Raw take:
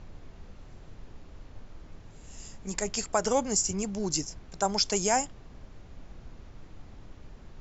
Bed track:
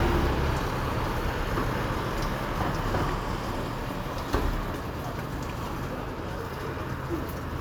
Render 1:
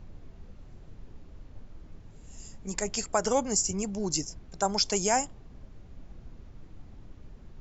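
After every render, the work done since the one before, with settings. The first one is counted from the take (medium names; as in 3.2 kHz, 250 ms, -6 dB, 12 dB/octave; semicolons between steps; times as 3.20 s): noise reduction 6 dB, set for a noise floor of -50 dBFS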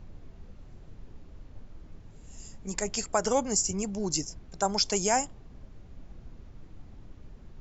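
no audible change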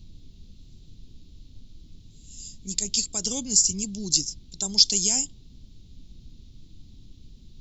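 FFT filter 270 Hz 0 dB, 630 Hz -17 dB, 1.7 kHz -18 dB, 3.8 kHz +14 dB, 5.9 kHz +8 dB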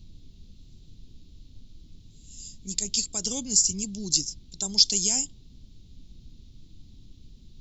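trim -1.5 dB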